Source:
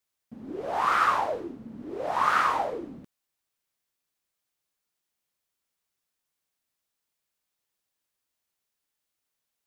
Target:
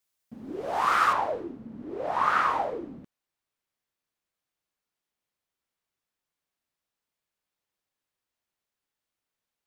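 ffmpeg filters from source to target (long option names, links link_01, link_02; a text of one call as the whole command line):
ffmpeg -i in.wav -af "asetnsamples=nb_out_samples=441:pad=0,asendcmd='1.13 highshelf g -8.5',highshelf=frequency=4300:gain=3.5" out.wav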